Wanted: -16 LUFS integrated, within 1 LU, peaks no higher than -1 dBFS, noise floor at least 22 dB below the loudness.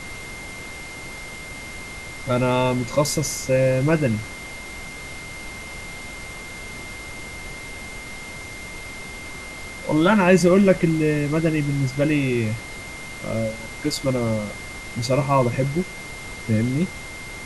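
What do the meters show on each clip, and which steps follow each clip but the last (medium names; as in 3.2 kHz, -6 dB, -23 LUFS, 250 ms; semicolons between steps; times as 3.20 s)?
steady tone 2.1 kHz; tone level -36 dBFS; noise floor -36 dBFS; noise floor target -45 dBFS; loudness -23.0 LUFS; peak level -3.5 dBFS; loudness target -16.0 LUFS
-> band-stop 2.1 kHz, Q 30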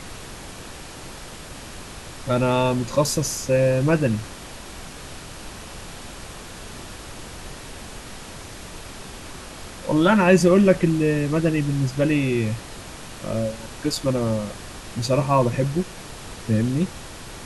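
steady tone not found; noise floor -39 dBFS; noise floor target -44 dBFS
-> noise print and reduce 6 dB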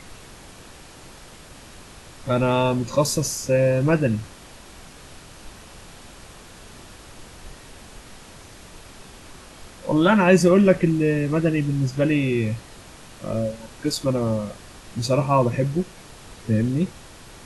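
noise floor -45 dBFS; loudness -21.5 LUFS; peak level -3.0 dBFS; loudness target -16.0 LUFS
-> trim +5.5 dB; peak limiter -1 dBFS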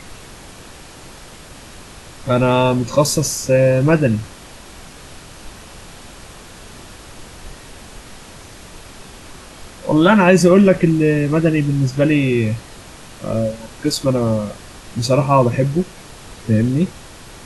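loudness -16.0 LUFS; peak level -1.0 dBFS; noise floor -39 dBFS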